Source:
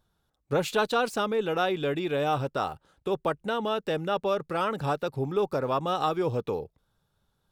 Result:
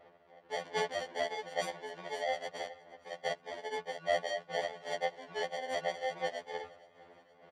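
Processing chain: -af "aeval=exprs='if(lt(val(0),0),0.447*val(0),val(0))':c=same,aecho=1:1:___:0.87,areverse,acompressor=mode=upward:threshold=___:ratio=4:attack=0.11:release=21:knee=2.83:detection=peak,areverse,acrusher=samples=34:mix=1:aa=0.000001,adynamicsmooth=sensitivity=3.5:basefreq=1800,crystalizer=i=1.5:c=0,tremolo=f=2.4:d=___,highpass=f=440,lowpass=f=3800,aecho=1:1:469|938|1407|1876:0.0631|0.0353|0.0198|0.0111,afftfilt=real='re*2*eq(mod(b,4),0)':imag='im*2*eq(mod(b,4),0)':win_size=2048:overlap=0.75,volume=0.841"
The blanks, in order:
1.5, 0.0398, 0.55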